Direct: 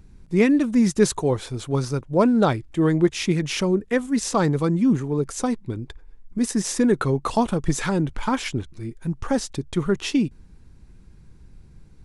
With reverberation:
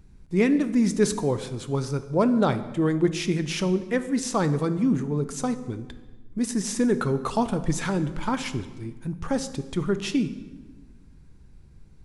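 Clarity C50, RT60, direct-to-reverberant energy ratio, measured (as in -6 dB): 13.0 dB, 1.3 s, 11.0 dB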